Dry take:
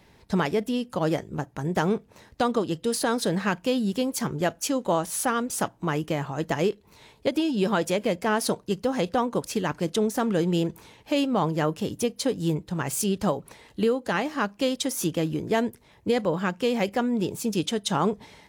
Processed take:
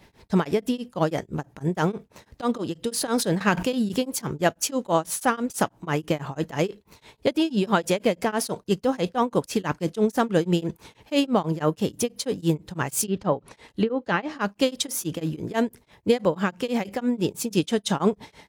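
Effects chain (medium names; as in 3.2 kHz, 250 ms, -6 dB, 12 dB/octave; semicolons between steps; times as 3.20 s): 13.04–14.41 s: low-pass that closes with the level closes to 1.9 kHz, closed at -18.5 dBFS; tremolo triangle 6.1 Hz, depth 100%; 2.93–3.99 s: decay stretcher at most 95 dB/s; trim +5.5 dB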